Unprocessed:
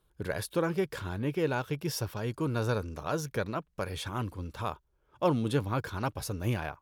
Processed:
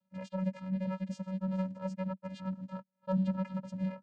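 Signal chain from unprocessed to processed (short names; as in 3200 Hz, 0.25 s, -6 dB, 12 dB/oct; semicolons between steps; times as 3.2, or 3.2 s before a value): granular stretch 0.59×, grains 0.103 s; vocoder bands 8, square 188 Hz; gain -1 dB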